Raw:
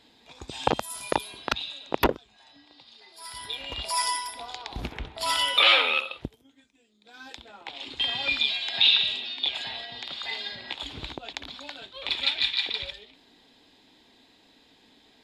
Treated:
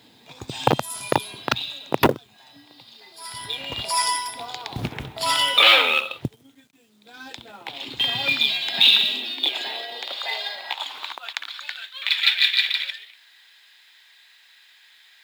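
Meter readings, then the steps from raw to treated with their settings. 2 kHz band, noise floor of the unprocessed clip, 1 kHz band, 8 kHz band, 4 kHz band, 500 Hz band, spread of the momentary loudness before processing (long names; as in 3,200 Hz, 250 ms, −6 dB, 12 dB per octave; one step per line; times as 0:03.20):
+5.5 dB, −60 dBFS, +4.5 dB, +5.0 dB, +5.0 dB, +5.0 dB, 21 LU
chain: log-companded quantiser 6 bits
high-pass filter sweep 120 Hz → 1,700 Hz, 0:08.19–0:11.71
level +4.5 dB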